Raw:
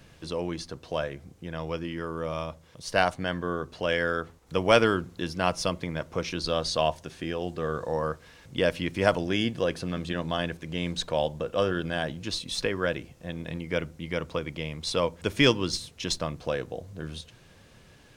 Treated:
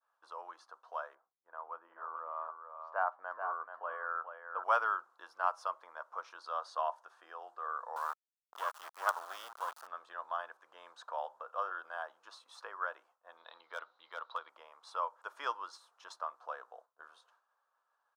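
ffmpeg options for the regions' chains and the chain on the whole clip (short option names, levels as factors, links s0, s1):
-filter_complex "[0:a]asettb=1/sr,asplit=3[s0][s1][s2];[s0]atrim=end=1.154[s3];[s1]atrim=start=1.15:end=4.64,asetpts=PTS-STARTPTS,afade=t=in:d=0.004:c=qsin,afade=t=out:st=3.486:d=0.004:c=qsin,lowpass=1500,aecho=1:1:433:0.447,atrim=end_sample=153909[s4];[s2]atrim=start=4.636[s5];[s3][s4]acrossfade=d=0.004:c1=hsin:c2=qsin[s6];[s6][s5]acrossfade=d=0.004:c1=qsin:c2=hsin,asettb=1/sr,asplit=3[s7][s8][s9];[s7]atrim=end=7.964[s10];[s8]atrim=start=7.96:end=9.87,asetpts=PTS-STARTPTS,afade=t=in:d=0.004:c=qsin,afade=t=out:st=1.906:d=0.004:c=qsin,acrusher=bits=3:dc=4:mix=0:aa=0.000001,highshelf=f=2400:g=10[s11];[s9]atrim=start=9.866[s12];[s10][s11]acrossfade=d=0.004:c1=hsin:c2=qsin[s13];[s13][s12]acrossfade=d=0.004:c1=qsin:c2=hsin,asettb=1/sr,asplit=3[s14][s15][s16];[s14]atrim=end=13.374[s17];[s15]atrim=start=13.37:end=14.49,asetpts=PTS-STARTPTS,afade=t=in:d=0.004:c=qsin,afade=t=out:st=1.116:d=0.004:c=qsin,lowpass=f=3900:t=q:w=15,aeval=exprs='0.178*(abs(mod(val(0)/0.178+3,4)-2)-1)':c=same[s18];[s16]atrim=start=14.486[s19];[s17][s18]acrossfade=d=0.004:c1=hsin:c2=qsin[s20];[s20][s19]acrossfade=d=0.004:c1=qsin:c2=hsin,highpass=f=930:w=0.5412,highpass=f=930:w=1.3066,agate=range=0.0224:threshold=0.00282:ratio=3:detection=peak,firequalizer=gain_entry='entry(1300,0);entry(2100,-26);entry(3300,-24)':delay=0.05:min_phase=1"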